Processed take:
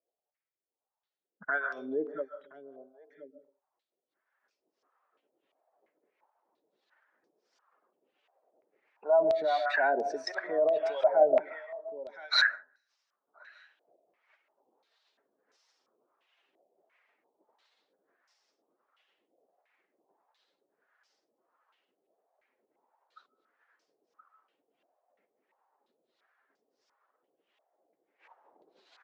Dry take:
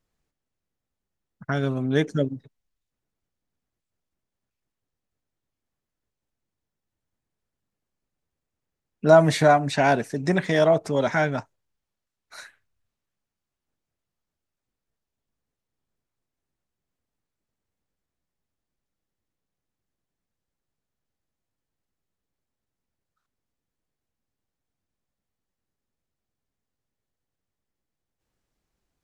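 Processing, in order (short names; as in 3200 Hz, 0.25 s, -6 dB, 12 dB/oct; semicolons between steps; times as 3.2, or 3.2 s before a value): spectral contrast raised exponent 1.5; recorder AGC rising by 11 dB/s; on a send at -12 dB: reverb RT60 0.40 s, pre-delay 0.101 s; on the sum: limiter -15 dBFS, peak gain reduction 9.5 dB; HPF 390 Hz 24 dB/oct; echo 1.023 s -16.5 dB; harmonic tremolo 1.5 Hz, depth 100%, crossover 700 Hz; stepped low-pass 2.9 Hz 680–5300 Hz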